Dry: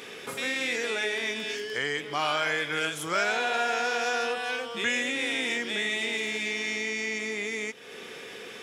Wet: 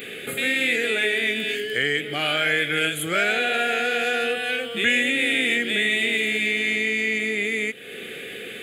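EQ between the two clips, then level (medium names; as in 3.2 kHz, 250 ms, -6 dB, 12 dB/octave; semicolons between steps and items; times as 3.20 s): treble shelf 11 kHz +7.5 dB; static phaser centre 2.4 kHz, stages 4; +8.5 dB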